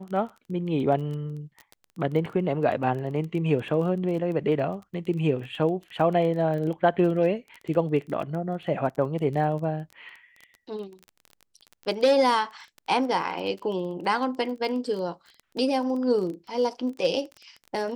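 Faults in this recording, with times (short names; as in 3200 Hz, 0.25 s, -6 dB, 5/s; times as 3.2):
crackle 18/s -33 dBFS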